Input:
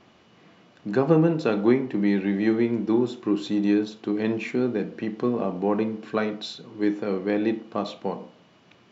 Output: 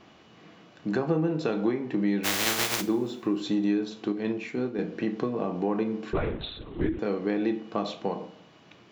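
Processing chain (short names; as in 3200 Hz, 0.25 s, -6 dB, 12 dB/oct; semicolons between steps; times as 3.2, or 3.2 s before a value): 2.23–2.8 spectral contrast lowered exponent 0.17; 4.12–4.79 gate -22 dBFS, range -7 dB; compressor 4:1, threshold -26 dBFS, peak gain reduction 11 dB; two-slope reverb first 0.33 s, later 1.8 s, from -22 dB, DRR 9.5 dB; 6.13–6.99 LPC vocoder at 8 kHz whisper; gain +1.5 dB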